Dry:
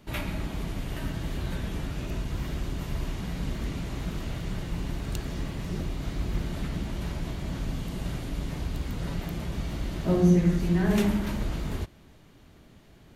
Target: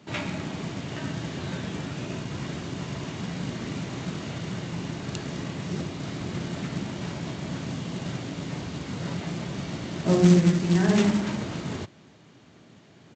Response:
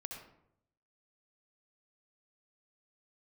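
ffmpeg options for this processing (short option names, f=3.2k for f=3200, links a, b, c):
-af "highpass=f=110:w=0.5412,highpass=f=110:w=1.3066,aresample=16000,acrusher=bits=4:mode=log:mix=0:aa=0.000001,aresample=44100,volume=3dB"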